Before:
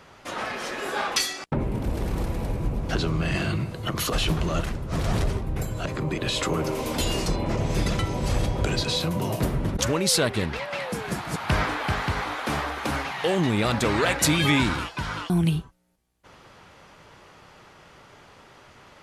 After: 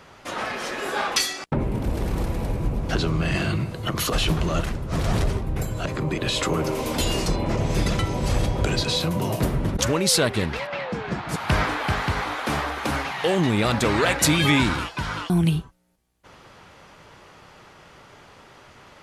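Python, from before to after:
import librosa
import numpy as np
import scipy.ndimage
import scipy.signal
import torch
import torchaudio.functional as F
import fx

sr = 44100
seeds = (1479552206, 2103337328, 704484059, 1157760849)

y = fx.air_absorb(x, sr, metres=160.0, at=(10.67, 11.29))
y = F.gain(torch.from_numpy(y), 2.0).numpy()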